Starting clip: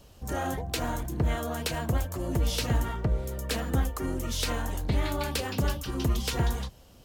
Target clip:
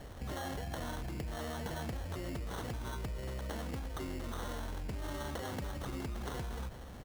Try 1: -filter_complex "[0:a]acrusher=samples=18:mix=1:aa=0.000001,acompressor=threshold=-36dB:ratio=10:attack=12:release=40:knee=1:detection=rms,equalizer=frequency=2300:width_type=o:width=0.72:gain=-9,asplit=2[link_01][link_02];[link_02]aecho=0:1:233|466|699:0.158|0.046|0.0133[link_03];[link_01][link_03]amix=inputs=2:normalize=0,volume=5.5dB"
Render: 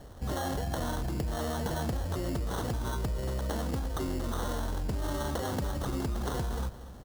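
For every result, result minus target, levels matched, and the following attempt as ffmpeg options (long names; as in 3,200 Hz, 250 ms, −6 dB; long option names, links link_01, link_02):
downward compressor: peak gain reduction −7.5 dB; 2,000 Hz band −3.5 dB
-filter_complex "[0:a]acrusher=samples=18:mix=1:aa=0.000001,acompressor=threshold=-44.5dB:ratio=10:attack=12:release=40:knee=1:detection=rms,equalizer=frequency=2300:width_type=o:width=0.72:gain=-9,asplit=2[link_01][link_02];[link_02]aecho=0:1:233|466|699:0.158|0.046|0.0133[link_03];[link_01][link_03]amix=inputs=2:normalize=0,volume=5.5dB"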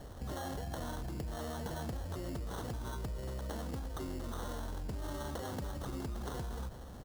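2,000 Hz band −3.5 dB
-filter_complex "[0:a]acrusher=samples=18:mix=1:aa=0.000001,acompressor=threshold=-44.5dB:ratio=10:attack=12:release=40:knee=1:detection=rms,asplit=2[link_01][link_02];[link_02]aecho=0:1:233|466|699:0.158|0.046|0.0133[link_03];[link_01][link_03]amix=inputs=2:normalize=0,volume=5.5dB"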